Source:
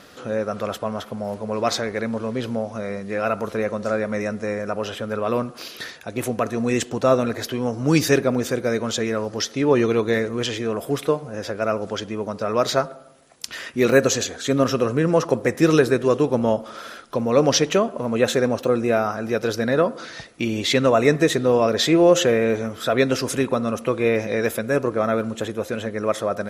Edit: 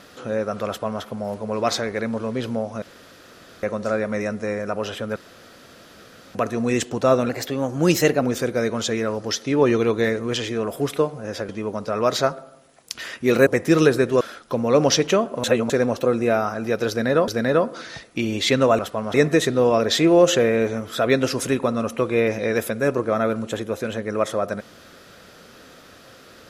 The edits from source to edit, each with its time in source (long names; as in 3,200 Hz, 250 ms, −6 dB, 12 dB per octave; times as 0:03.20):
0:00.67–0:01.02: duplicate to 0:21.02
0:02.82–0:03.63: fill with room tone
0:05.16–0:06.35: fill with room tone
0:07.29–0:08.31: play speed 110%
0:11.58–0:12.02: remove
0:14.00–0:15.39: remove
0:16.13–0:16.83: remove
0:18.06–0:18.32: reverse
0:19.51–0:19.90: repeat, 2 plays